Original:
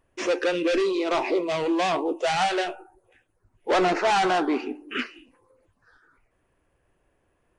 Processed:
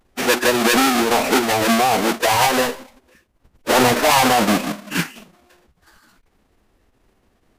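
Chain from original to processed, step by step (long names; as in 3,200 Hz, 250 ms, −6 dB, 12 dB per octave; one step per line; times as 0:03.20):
each half-wave held at its own peak
phase-vocoder pitch shift with formants kept −6.5 semitones
level +5 dB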